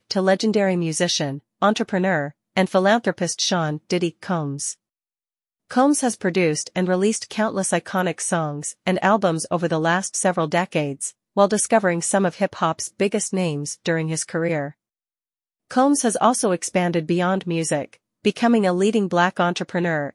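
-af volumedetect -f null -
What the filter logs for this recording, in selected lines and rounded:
mean_volume: -21.5 dB
max_volume: -2.8 dB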